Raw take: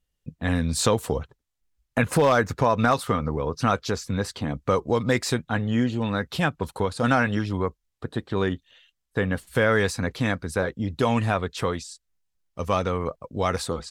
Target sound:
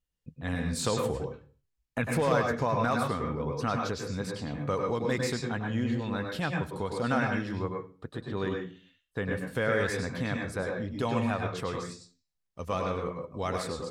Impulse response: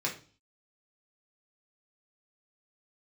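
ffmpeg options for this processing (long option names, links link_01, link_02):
-filter_complex "[0:a]asplit=2[link_01][link_02];[link_02]lowpass=frequency=9900:width=0.5412,lowpass=frequency=9900:width=1.3066[link_03];[1:a]atrim=start_sample=2205,adelay=100[link_04];[link_03][link_04]afir=irnorm=-1:irlink=0,volume=-7.5dB[link_05];[link_01][link_05]amix=inputs=2:normalize=0,volume=-8.5dB"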